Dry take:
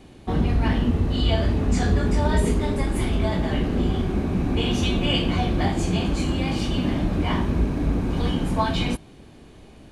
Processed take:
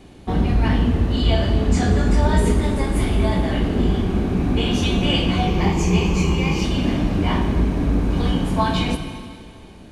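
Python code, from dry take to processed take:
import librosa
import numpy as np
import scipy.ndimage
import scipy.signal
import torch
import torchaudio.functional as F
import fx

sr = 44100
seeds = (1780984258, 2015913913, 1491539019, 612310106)

y = fx.ripple_eq(x, sr, per_octave=0.78, db=11, at=(5.47, 6.64))
y = fx.rev_plate(y, sr, seeds[0], rt60_s=2.2, hf_ratio=0.95, predelay_ms=0, drr_db=6.5)
y = F.gain(torch.from_numpy(y), 2.0).numpy()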